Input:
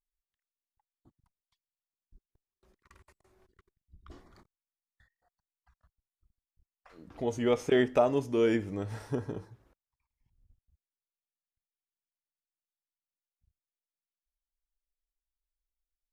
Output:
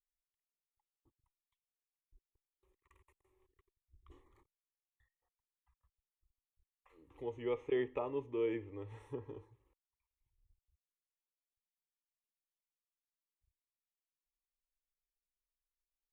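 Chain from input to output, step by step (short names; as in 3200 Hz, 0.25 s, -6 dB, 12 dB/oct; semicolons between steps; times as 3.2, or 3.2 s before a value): treble ducked by the level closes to 2700 Hz, closed at -28.5 dBFS; fixed phaser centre 1000 Hz, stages 8; gain -8 dB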